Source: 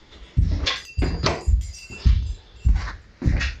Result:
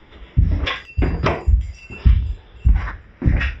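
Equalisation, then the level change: polynomial smoothing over 25 samples; +4.0 dB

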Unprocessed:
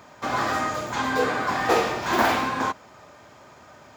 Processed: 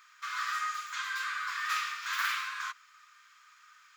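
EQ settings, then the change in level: elliptic high-pass 1200 Hz, stop band 40 dB; -5.0 dB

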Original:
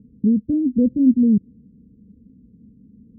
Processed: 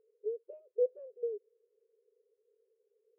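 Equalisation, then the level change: brick-wall FIR high-pass 390 Hz; air absorption 440 m; 0.0 dB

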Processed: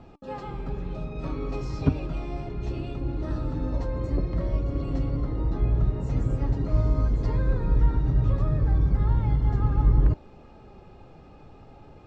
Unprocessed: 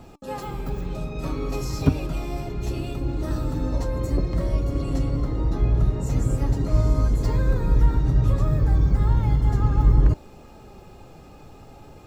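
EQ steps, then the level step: air absorption 170 m; -3.0 dB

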